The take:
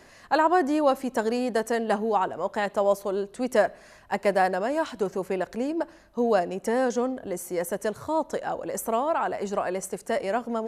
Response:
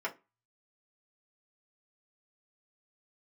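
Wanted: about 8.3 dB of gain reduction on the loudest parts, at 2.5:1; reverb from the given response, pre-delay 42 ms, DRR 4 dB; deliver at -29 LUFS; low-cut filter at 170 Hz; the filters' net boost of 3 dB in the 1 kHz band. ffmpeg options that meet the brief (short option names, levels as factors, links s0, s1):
-filter_complex "[0:a]highpass=170,equalizer=f=1000:t=o:g=4,acompressor=threshold=0.0447:ratio=2.5,asplit=2[s0][s1];[1:a]atrim=start_sample=2205,adelay=42[s2];[s1][s2]afir=irnorm=-1:irlink=0,volume=0.355[s3];[s0][s3]amix=inputs=2:normalize=0"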